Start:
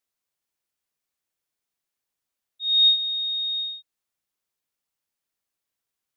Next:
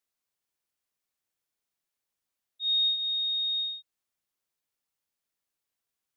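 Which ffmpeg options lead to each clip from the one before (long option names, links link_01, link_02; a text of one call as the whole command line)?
ffmpeg -i in.wav -af "acompressor=threshold=-22dB:ratio=6,volume=-2dB" out.wav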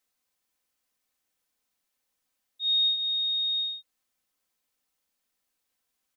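ffmpeg -i in.wav -af "aecho=1:1:3.9:0.46,volume=5.5dB" out.wav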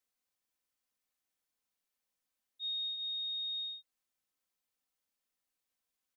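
ffmpeg -i in.wav -af "acompressor=threshold=-28dB:ratio=6,volume=-8dB" out.wav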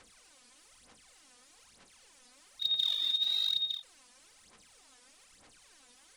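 ffmpeg -i in.wav -af "aeval=exprs='val(0)+0.5*0.00133*sgn(val(0))':channel_layout=same,aresample=22050,aresample=44100,aphaser=in_gain=1:out_gain=1:delay=4.1:decay=0.73:speed=1.1:type=sinusoidal,volume=3.5dB" out.wav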